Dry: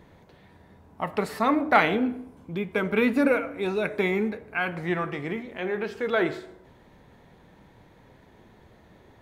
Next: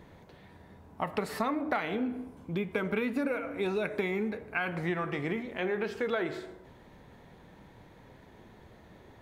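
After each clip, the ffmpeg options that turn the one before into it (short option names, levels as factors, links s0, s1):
-af "acompressor=threshold=0.0447:ratio=12"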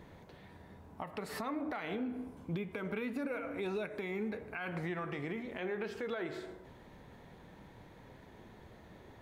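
-af "alimiter=level_in=1.58:limit=0.0631:level=0:latency=1:release=242,volume=0.631,volume=0.891"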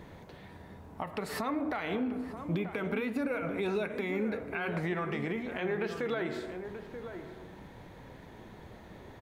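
-filter_complex "[0:a]asplit=2[s0][s1];[s1]adelay=932.9,volume=0.355,highshelf=f=4000:g=-21[s2];[s0][s2]amix=inputs=2:normalize=0,volume=1.78"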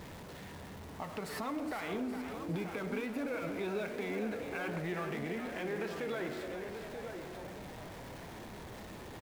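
-filter_complex "[0:a]aeval=exprs='val(0)+0.5*0.0112*sgn(val(0))':c=same,asplit=9[s0][s1][s2][s3][s4][s5][s6][s7][s8];[s1]adelay=413,afreqshift=80,volume=0.316[s9];[s2]adelay=826,afreqshift=160,volume=0.2[s10];[s3]adelay=1239,afreqshift=240,volume=0.126[s11];[s4]adelay=1652,afreqshift=320,volume=0.0794[s12];[s5]adelay=2065,afreqshift=400,volume=0.0495[s13];[s6]adelay=2478,afreqshift=480,volume=0.0313[s14];[s7]adelay=2891,afreqshift=560,volume=0.0197[s15];[s8]adelay=3304,afreqshift=640,volume=0.0124[s16];[s0][s9][s10][s11][s12][s13][s14][s15][s16]amix=inputs=9:normalize=0,volume=0.473"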